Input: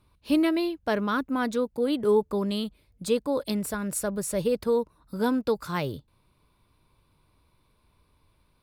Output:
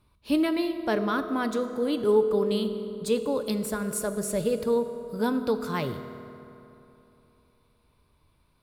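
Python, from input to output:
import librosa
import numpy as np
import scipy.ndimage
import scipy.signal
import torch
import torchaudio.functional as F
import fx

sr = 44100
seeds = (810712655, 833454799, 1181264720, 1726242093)

y = fx.rev_fdn(x, sr, rt60_s=3.1, lf_ratio=1.0, hf_ratio=0.55, size_ms=14.0, drr_db=8.0)
y = y * 10.0 ** (-1.0 / 20.0)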